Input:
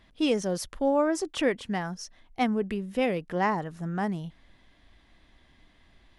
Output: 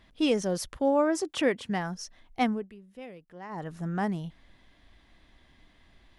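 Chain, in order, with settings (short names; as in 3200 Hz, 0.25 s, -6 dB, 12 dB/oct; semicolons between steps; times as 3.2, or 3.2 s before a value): 0.76–1.7 HPF 77 Hz; 2.47–3.69 dip -17.5 dB, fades 0.20 s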